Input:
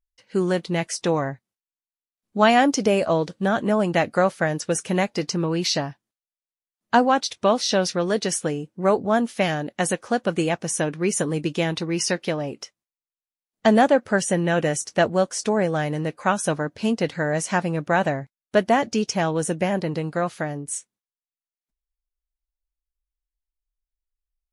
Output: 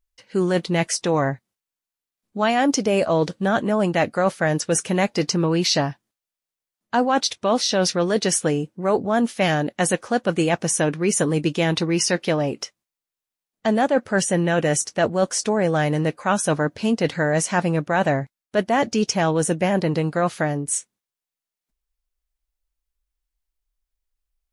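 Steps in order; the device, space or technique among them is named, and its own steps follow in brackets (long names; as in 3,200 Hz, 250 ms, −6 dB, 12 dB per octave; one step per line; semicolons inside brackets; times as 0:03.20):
compression on the reversed sound (reversed playback; downward compressor 6 to 1, threshold −22 dBFS, peak gain reduction 11 dB; reversed playback)
level +6 dB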